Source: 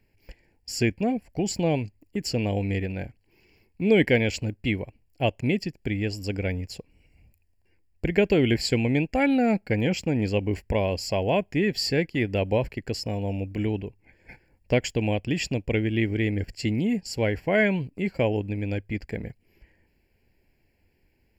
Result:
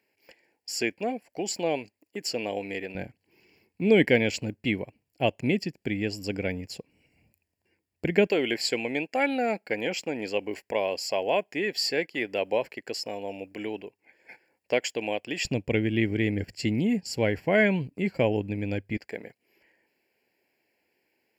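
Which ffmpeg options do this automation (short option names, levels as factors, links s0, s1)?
-af "asetnsamples=n=441:p=0,asendcmd='2.95 highpass f 150;8.27 highpass f 420;15.45 highpass f 110;18.97 highpass f 390',highpass=390"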